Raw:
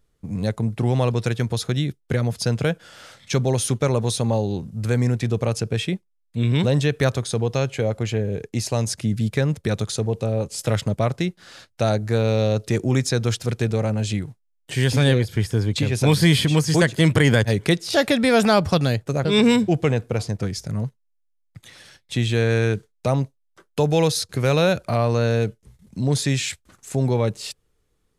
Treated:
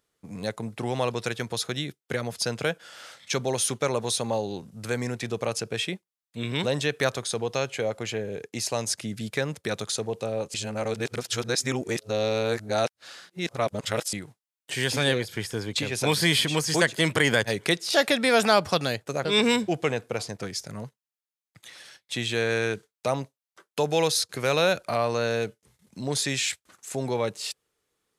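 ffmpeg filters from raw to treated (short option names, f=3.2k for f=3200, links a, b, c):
-filter_complex "[0:a]asplit=3[a][b][c];[a]atrim=end=10.542[d];[b]atrim=start=10.538:end=14.132,asetpts=PTS-STARTPTS,areverse[e];[c]atrim=start=14.128[f];[d][e]acrossfade=d=0.004:c1=hsin:c2=hsin[g];[g][f]acrossfade=d=0.004:c1=hsin:c2=hsin,highpass=f=600:p=1"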